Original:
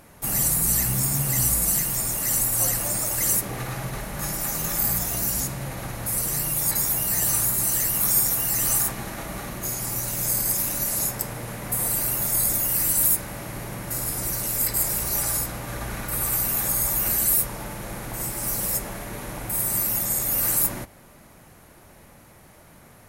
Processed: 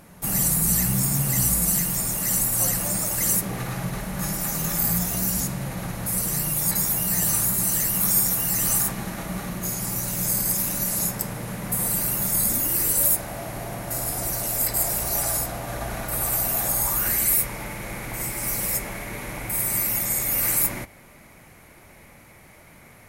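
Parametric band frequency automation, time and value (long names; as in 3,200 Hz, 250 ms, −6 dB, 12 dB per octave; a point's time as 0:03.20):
parametric band +10 dB 0.34 octaves
0:12.37 180 Hz
0:13.17 690 Hz
0:16.76 690 Hz
0:17.17 2,200 Hz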